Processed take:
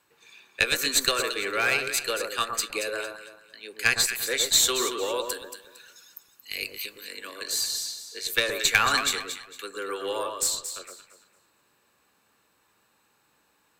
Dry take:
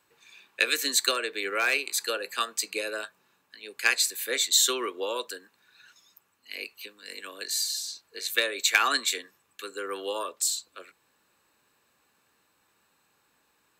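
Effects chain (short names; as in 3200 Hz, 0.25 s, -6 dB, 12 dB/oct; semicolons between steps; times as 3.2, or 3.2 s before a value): 5.28–6.99 high shelf 5900 Hz -> 3600 Hz +11.5 dB; added harmonics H 6 -25 dB, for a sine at -4.5 dBFS; echo with dull and thin repeats by turns 0.114 s, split 1400 Hz, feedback 52%, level -4 dB; gain +1 dB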